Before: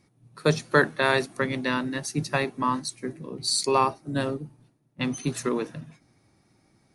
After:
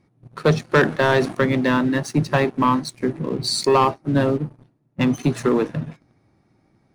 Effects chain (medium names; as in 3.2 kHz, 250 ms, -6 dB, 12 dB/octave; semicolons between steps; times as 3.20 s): low-pass 1.6 kHz 6 dB/octave; in parallel at +2 dB: compression 5:1, threshold -37 dBFS, peak gain reduction 19.5 dB; on the sum: waveshaping leveller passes 2; 0.79–1.35 s: decay stretcher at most 140 dB/s